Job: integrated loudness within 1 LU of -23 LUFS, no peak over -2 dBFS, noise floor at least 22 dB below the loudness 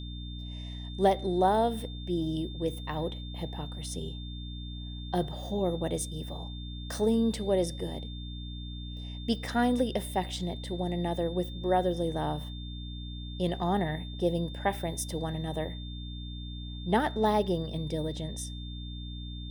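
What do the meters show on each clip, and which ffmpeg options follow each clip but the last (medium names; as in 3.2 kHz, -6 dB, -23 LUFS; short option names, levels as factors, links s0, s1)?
hum 60 Hz; highest harmonic 300 Hz; hum level -37 dBFS; steady tone 3.6 kHz; tone level -46 dBFS; loudness -32.0 LUFS; peak level -12.0 dBFS; loudness target -23.0 LUFS
-> -af "bandreject=f=60:t=h:w=4,bandreject=f=120:t=h:w=4,bandreject=f=180:t=h:w=4,bandreject=f=240:t=h:w=4,bandreject=f=300:t=h:w=4"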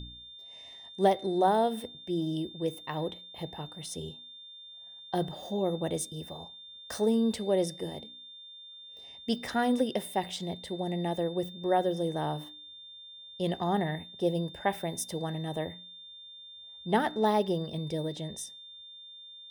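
hum not found; steady tone 3.6 kHz; tone level -46 dBFS
-> -af "bandreject=f=3600:w=30"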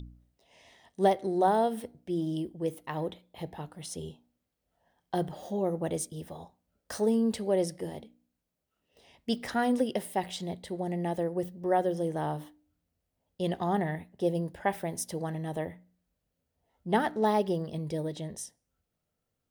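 steady tone not found; loudness -31.5 LUFS; peak level -12.5 dBFS; loudness target -23.0 LUFS
-> -af "volume=2.66"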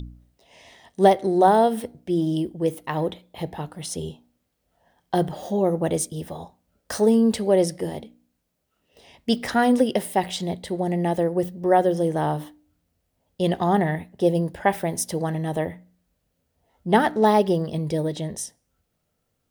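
loudness -23.0 LUFS; peak level -4.0 dBFS; noise floor -75 dBFS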